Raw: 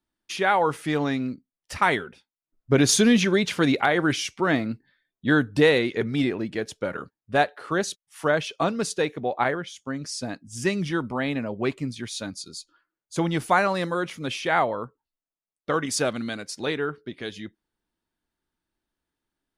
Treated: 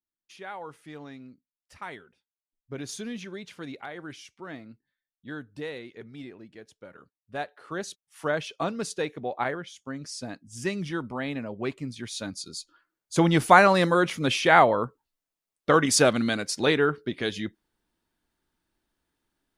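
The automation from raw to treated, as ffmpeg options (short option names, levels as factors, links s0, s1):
-af "volume=1.78,afade=t=in:st=6.94:d=0.55:silence=0.473151,afade=t=in:st=7.49:d=0.81:silence=0.473151,afade=t=in:st=11.84:d=1.71:silence=0.316228"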